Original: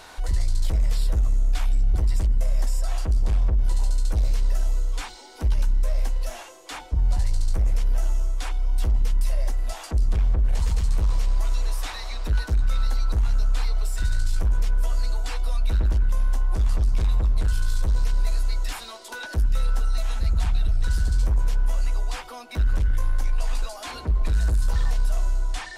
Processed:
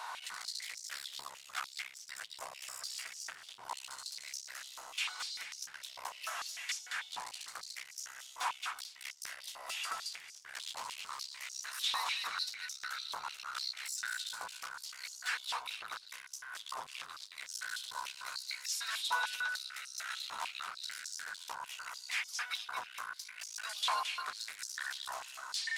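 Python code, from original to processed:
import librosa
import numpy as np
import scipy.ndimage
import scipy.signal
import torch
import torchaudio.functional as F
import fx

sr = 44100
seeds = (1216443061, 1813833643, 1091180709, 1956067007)

y = np.clip(x, -10.0 ** (-21.5 / 20.0), 10.0 ** (-21.5 / 20.0))
y = fx.echo_feedback(y, sr, ms=222, feedback_pct=31, wet_db=-4.0)
y = fx.filter_held_highpass(y, sr, hz=6.7, low_hz=980.0, high_hz=5700.0)
y = F.gain(torch.from_numpy(y), -3.5).numpy()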